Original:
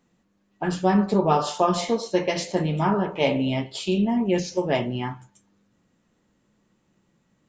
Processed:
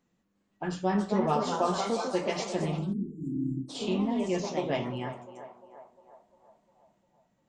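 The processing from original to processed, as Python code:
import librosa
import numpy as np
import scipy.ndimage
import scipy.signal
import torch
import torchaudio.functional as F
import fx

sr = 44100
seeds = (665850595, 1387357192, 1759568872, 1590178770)

y = fx.echo_banded(x, sr, ms=351, feedback_pct=62, hz=770.0, wet_db=-10.0)
y = fx.spec_erase(y, sr, start_s=2.79, length_s=0.95, low_hz=350.0, high_hz=6900.0)
y = fx.echo_pitch(y, sr, ms=357, semitones=2, count=2, db_per_echo=-6.0)
y = y * librosa.db_to_amplitude(-7.5)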